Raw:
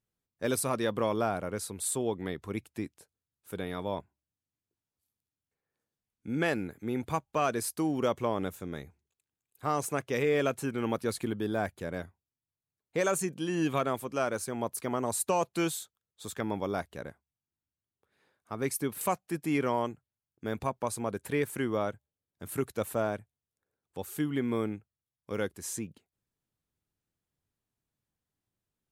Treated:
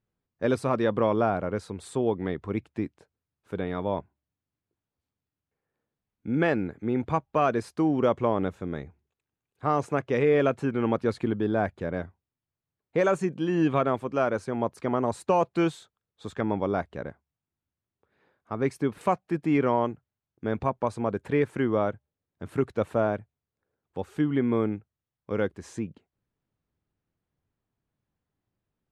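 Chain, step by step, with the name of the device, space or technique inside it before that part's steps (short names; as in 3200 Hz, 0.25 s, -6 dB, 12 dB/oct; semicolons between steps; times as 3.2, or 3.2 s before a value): through cloth (LPF 7000 Hz 12 dB/oct; high shelf 3800 Hz -18 dB); gain +6 dB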